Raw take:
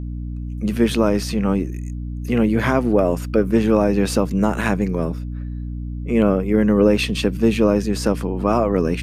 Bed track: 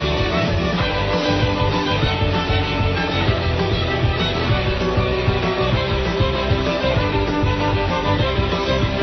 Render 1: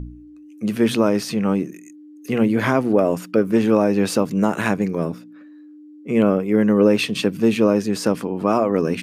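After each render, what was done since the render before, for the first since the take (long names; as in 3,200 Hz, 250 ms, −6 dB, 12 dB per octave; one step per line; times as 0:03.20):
hum removal 60 Hz, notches 4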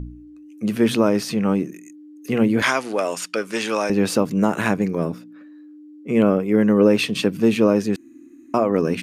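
0:02.62–0:03.90: meter weighting curve ITU-R 468
0:07.96–0:08.54: fill with room tone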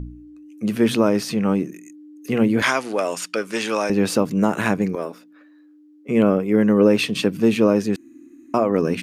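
0:04.95–0:06.09: high-pass filter 440 Hz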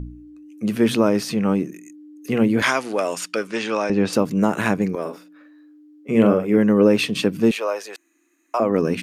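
0:03.47–0:04.13: high-frequency loss of the air 86 metres
0:05.01–0:06.58: double-tracking delay 44 ms −6.5 dB
0:07.51–0:08.60: high-pass filter 580 Hz 24 dB per octave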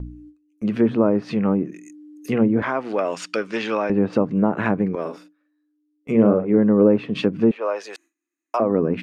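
noise gate with hold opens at −35 dBFS
treble cut that deepens with the level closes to 1,100 Hz, closed at −15 dBFS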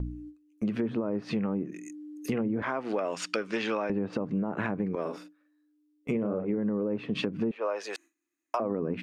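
brickwall limiter −11 dBFS, peak gain reduction 7 dB
downward compressor 5 to 1, threshold −27 dBFS, peak gain reduction 11 dB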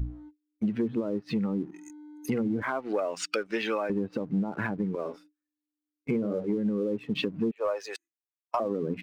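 spectral dynamics exaggerated over time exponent 1.5
leveller curve on the samples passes 1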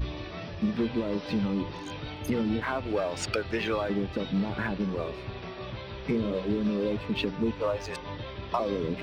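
mix in bed track −20 dB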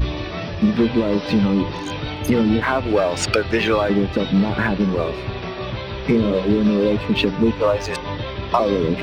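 level +11 dB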